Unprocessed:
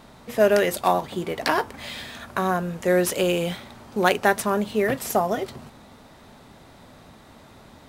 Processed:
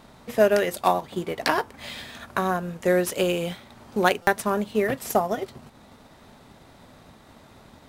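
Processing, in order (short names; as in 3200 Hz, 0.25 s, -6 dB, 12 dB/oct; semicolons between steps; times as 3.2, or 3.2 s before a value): transient shaper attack +3 dB, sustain -4 dB; stuck buffer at 4.22, samples 256, times 8; gain -2 dB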